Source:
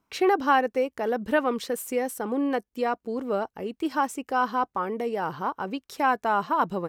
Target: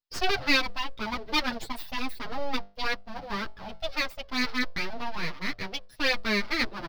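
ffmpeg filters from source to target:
ffmpeg -i in.wav -filter_complex "[0:a]afftdn=noise_reduction=21:noise_floor=-35,equalizer=frequency=3400:width=0.89:gain=8,bandreject=frequency=50:width_type=h:width=6,bandreject=frequency=100:width_type=h:width=6,bandreject=frequency=150:width_type=h:width=6,bandreject=frequency=200:width_type=h:width=6,bandreject=frequency=250:width_type=h:width=6,bandreject=frequency=300:width_type=h:width=6,bandreject=frequency=350:width_type=h:width=6,bandreject=frequency=400:width_type=h:width=6,bandreject=frequency=450:width_type=h:width=6,aeval=exprs='abs(val(0))':channel_layout=same,highshelf=frequency=6100:width_type=q:width=3:gain=-9,crystalizer=i=2.5:c=0,asplit=2[link_01][link_02];[link_02]adelay=8,afreqshift=0.37[link_03];[link_01][link_03]amix=inputs=2:normalize=1" out.wav

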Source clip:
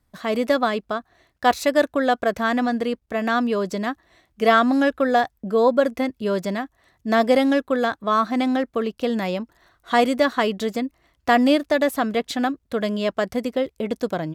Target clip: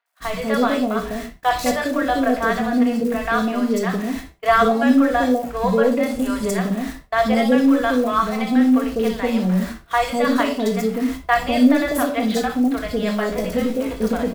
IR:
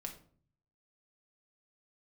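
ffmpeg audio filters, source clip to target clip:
-filter_complex "[0:a]aeval=exprs='val(0)+0.5*0.0335*sgn(val(0))':channel_layout=same,asettb=1/sr,asplit=3[link_01][link_02][link_03];[link_01]atrim=end=6.004[link_04];[link_02]atrim=start=6:end=6.5,asetpts=PTS-STARTPTS,afade=type=in:duration=0.004:curve=qsin,afade=type=out:start_time=0.496:duration=0.004:curve=qsin,equalizer=frequency=9000:width_type=o:width=0.94:gain=9.5[link_05];[link_03]atrim=start=6.496[link_06];[link_04][link_05]acrossfade=duration=0.004:curve1=hsin:curve2=qsin[link_07];[link_07][link_06]acrossfade=duration=0.004:curve1=qsin:curve2=hsin,asettb=1/sr,asplit=3[link_08][link_09][link_10];[link_08]atrim=end=13.074[link_11];[link_09]atrim=start=13.07:end=14.01,asetpts=PTS-STARTPTS,afade=type=in:duration=0.004:curve=qsin,afade=type=out:start_time=0.936:duration=0.004:curve=qsin,asplit=2[link_12][link_13];[link_13]adelay=18,volume=-6.5dB[link_14];[link_12][link_14]amix=inputs=2:normalize=0,atrim=end_sample=41454[link_15];[link_10]atrim=start=14.006[link_16];[link_11][link_15]acrossfade=duration=0.004:curve1=hsin:curve2=qsin[link_17];[link_17][link_16]acrossfade=duration=0.004:curve1=qsin:curve2=hsin,acrossover=split=600|3700[link_18][link_19][link_20];[link_20]adelay=60[link_21];[link_18]adelay=200[link_22];[link_22][link_19][link_21]amix=inputs=3:normalize=0,agate=range=-35dB:threshold=-32dB:ratio=16:detection=peak[link_23];[1:a]atrim=start_sample=2205,atrim=end_sample=6615[link_24];[link_23][link_24]afir=irnorm=-1:irlink=0,volume=4dB"

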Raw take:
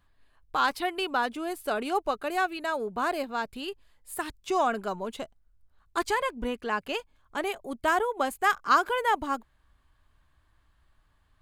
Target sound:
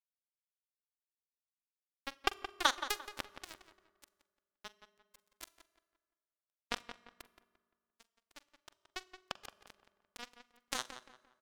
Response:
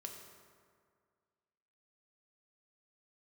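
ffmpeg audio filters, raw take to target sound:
-filter_complex "[0:a]areverse,aecho=1:1:0.9:0.71,acompressor=threshold=-28dB:ratio=2.5,acrusher=bits=2:mix=0:aa=0.5,asplit=2[link_01][link_02];[link_02]adelay=173,lowpass=frequency=3000:poles=1,volume=-10dB,asplit=2[link_03][link_04];[link_04]adelay=173,lowpass=frequency=3000:poles=1,volume=0.34,asplit=2[link_05][link_06];[link_06]adelay=173,lowpass=frequency=3000:poles=1,volume=0.34,asplit=2[link_07][link_08];[link_08]adelay=173,lowpass=frequency=3000:poles=1,volume=0.34[link_09];[link_01][link_03][link_05][link_07][link_09]amix=inputs=5:normalize=0,asplit=2[link_10][link_11];[1:a]atrim=start_sample=2205,adelay=43[link_12];[link_11][link_12]afir=irnorm=-1:irlink=0,volume=-13dB[link_13];[link_10][link_13]amix=inputs=2:normalize=0,volume=10dB"

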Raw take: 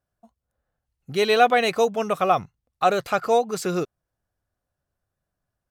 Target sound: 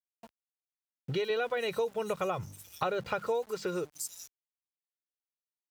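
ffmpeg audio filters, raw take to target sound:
ffmpeg -i in.wav -filter_complex "[0:a]bandreject=frequency=50:width_type=h:width=6,bandreject=frequency=100:width_type=h:width=6,bandreject=frequency=150:width_type=h:width=6,bandreject=frequency=200:width_type=h:width=6,bandreject=frequency=250:width_type=h:width=6,bandreject=frequency=300:width_type=h:width=6,aecho=1:1:2.1:0.56,acrossover=split=6000[link_01][link_02];[link_02]adelay=430[link_03];[link_01][link_03]amix=inputs=2:normalize=0,acompressor=threshold=-38dB:ratio=5,asettb=1/sr,asplit=3[link_04][link_05][link_06];[link_04]atrim=end=1.304[link_07];[link_05]atrim=start=1.3:end=3.43,asetpts=PTS-STARTPTS,afade=type=in:duration=0.004:curve=qsin,afade=type=out:start_time=2.126:duration=0.004:curve=qsin,equalizer=frequency=110:width_type=o:width=1.8:gain=10.5[link_08];[link_06]atrim=start=3.426[link_09];[link_07][link_08]acrossfade=duration=0.004:curve1=hsin:curve2=qsin[link_10];[link_10][link_09]acrossfade=duration=0.004:curve1=qsin:curve2=hsin,aeval=exprs='val(0)*gte(abs(val(0)),0.00158)':channel_layout=same,highpass=45,volume=5.5dB" out.wav

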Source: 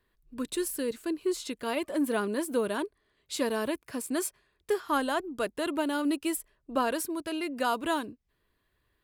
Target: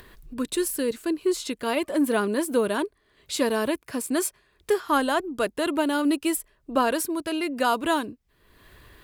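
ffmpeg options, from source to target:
ffmpeg -i in.wav -af "acompressor=mode=upward:threshold=-40dB:ratio=2.5,volume=5.5dB" out.wav

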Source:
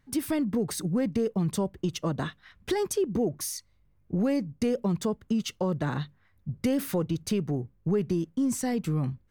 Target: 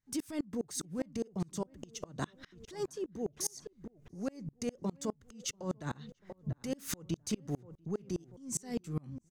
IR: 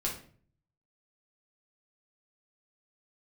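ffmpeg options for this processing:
-filter_complex "[0:a]equalizer=frequency=6700:width=1.4:gain=12,alimiter=limit=-20.5dB:level=0:latency=1:release=12,acompressor=threshold=-36dB:ratio=6,asplit=2[link_01][link_02];[link_02]adelay=689,lowpass=frequency=1500:poles=1,volume=-12dB,asplit=2[link_03][link_04];[link_04]adelay=689,lowpass=frequency=1500:poles=1,volume=0.36,asplit=2[link_05][link_06];[link_06]adelay=689,lowpass=frequency=1500:poles=1,volume=0.36,asplit=2[link_07][link_08];[link_08]adelay=689,lowpass=frequency=1500:poles=1,volume=0.36[link_09];[link_03][link_05][link_07][link_09]amix=inputs=4:normalize=0[link_10];[link_01][link_10]amix=inputs=2:normalize=0,aeval=exprs='val(0)*pow(10,-32*if(lt(mod(-4.9*n/s,1),2*abs(-4.9)/1000),1-mod(-4.9*n/s,1)/(2*abs(-4.9)/1000),(mod(-4.9*n/s,1)-2*abs(-4.9)/1000)/(1-2*abs(-4.9)/1000))/20)':channel_layout=same,volume=8dB"

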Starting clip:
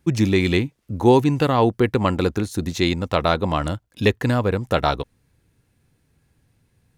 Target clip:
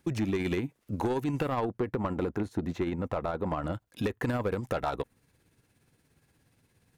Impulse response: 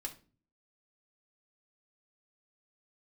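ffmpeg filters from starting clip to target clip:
-filter_complex "[0:a]lowshelf=frequency=120:gain=-11,acompressor=threshold=-20dB:ratio=6,tremolo=f=17:d=0.46,asoftclip=type=tanh:threshold=-21dB,acrossover=split=2600|7500[link_01][link_02][link_03];[link_01]acompressor=threshold=-28dB:ratio=4[link_04];[link_02]acompressor=threshold=-56dB:ratio=4[link_05];[link_03]acompressor=threshold=-57dB:ratio=4[link_06];[link_04][link_05][link_06]amix=inputs=3:normalize=0,asettb=1/sr,asplit=3[link_07][link_08][link_09];[link_07]atrim=end=1.654[link_10];[link_08]atrim=start=1.65:end=3.73,asetpts=PTS-STARTPTS,afade=type=in:duration=0.004:curve=qsin,afade=type=out:start_time=2.076:duration=0.004:curve=qsin,highshelf=frequency=2500:gain=-11.5[link_11];[link_09]atrim=start=3.726[link_12];[link_10][link_11]acrossfade=duration=0.004:curve1=hsin:curve2=qsin[link_13];[link_13][link_12]acrossfade=duration=0.004:curve1=qsin:curve2=hsin,volume=2dB"

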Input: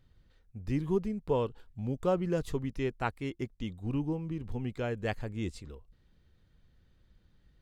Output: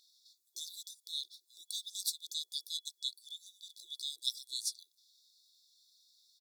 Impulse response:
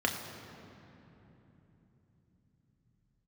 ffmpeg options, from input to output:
-af "asetrate=52479,aresample=44100,afftfilt=real='re*(1-between(b*sr/4096,150,3400))':imag='im*(1-between(b*sr/4096,150,3400))':win_size=4096:overlap=0.75,afftfilt=real='re*gte(b*sr/1024,340*pow(2100/340,0.5+0.5*sin(2*PI*5.8*pts/sr)))':imag='im*gte(b*sr/1024,340*pow(2100/340,0.5+0.5*sin(2*PI*5.8*pts/sr)))':win_size=1024:overlap=0.75,volume=16dB"

